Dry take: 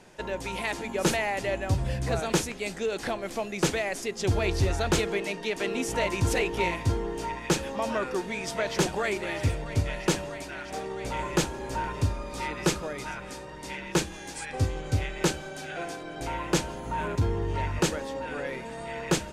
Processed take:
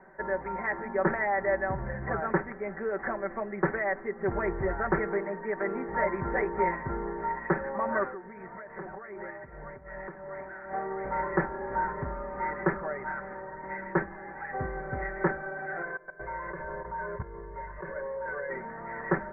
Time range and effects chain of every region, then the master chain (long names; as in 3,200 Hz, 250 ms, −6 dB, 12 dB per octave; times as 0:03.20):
0:08.07–0:10.71: downward compressor 12 to 1, threshold −34 dBFS + amplitude tremolo 2.6 Hz, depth 47%
0:15.82–0:18.50: comb filter 1.9 ms, depth 86% + output level in coarse steps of 18 dB
whole clip: Butterworth low-pass 2,000 Hz 96 dB per octave; low-shelf EQ 460 Hz −10.5 dB; comb filter 5.2 ms, depth 71%; level +2.5 dB